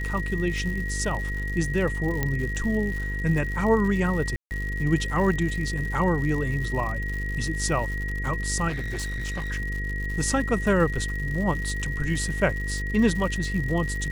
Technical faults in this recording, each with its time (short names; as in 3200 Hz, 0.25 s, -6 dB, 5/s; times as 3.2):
buzz 50 Hz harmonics 10 -30 dBFS
crackle 150/s -32 dBFS
tone 1900 Hz -32 dBFS
2.23 pop -11 dBFS
4.36–4.51 gap 0.149 s
8.68–9.52 clipped -26.5 dBFS